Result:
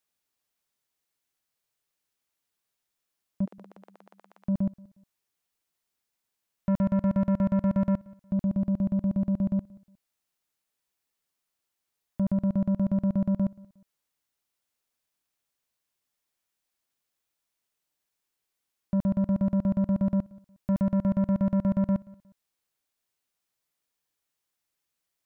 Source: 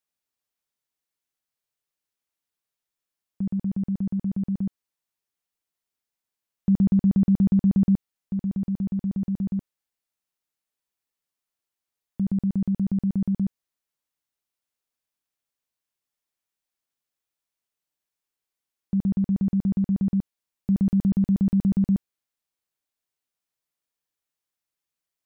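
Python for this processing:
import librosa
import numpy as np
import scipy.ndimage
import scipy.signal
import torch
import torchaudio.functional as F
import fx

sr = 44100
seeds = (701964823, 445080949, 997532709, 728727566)

y = fx.highpass(x, sr, hz=fx.line((3.44, 440.0), (4.44, 820.0)), slope=24, at=(3.44, 4.44), fade=0.02)
y = 10.0 ** (-25.5 / 20.0) * np.tanh(y / 10.0 ** (-25.5 / 20.0))
y = fx.echo_feedback(y, sr, ms=180, feedback_pct=31, wet_db=-23.0)
y = F.gain(torch.from_numpy(y), 4.0).numpy()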